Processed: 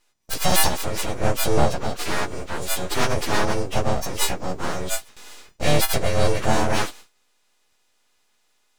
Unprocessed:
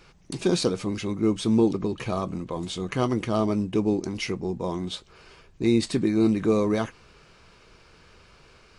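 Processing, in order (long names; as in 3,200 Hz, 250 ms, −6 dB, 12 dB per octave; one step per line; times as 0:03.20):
every partial snapped to a pitch grid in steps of 3 semitones
noise gate with hold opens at −37 dBFS
full-wave rectification
level +5.5 dB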